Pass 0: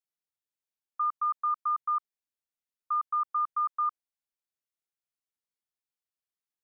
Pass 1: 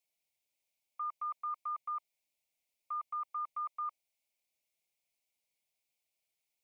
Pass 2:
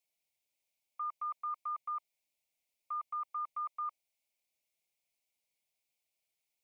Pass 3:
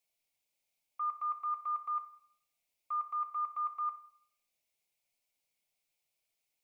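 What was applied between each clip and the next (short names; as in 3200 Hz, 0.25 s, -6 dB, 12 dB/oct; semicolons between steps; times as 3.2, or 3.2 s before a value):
EQ curve 430 Hz 0 dB, 610 Hz +8 dB, 940 Hz +1 dB, 1500 Hz -23 dB, 2200 Hz +12 dB, 3100 Hz +5 dB; gain +2.5 dB
nothing audible
shoebox room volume 130 m³, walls mixed, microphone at 0.39 m; gain +1 dB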